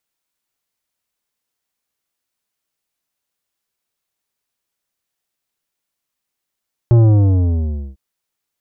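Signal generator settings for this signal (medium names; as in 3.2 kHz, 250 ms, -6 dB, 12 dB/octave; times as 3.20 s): sub drop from 120 Hz, over 1.05 s, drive 11 dB, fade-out 1.03 s, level -7.5 dB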